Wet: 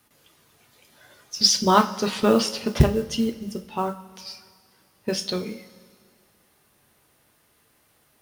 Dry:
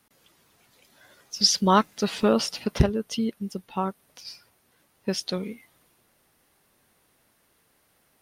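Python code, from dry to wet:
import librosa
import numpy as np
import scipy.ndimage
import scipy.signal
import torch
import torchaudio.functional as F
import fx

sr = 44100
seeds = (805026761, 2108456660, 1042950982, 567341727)

y = fx.rev_double_slope(x, sr, seeds[0], early_s=0.31, late_s=2.0, knee_db=-17, drr_db=5.0)
y = fx.mod_noise(y, sr, seeds[1], snr_db=27)
y = fx.quant_dither(y, sr, seeds[2], bits=12, dither='none')
y = y * librosa.db_to_amplitude(1.5)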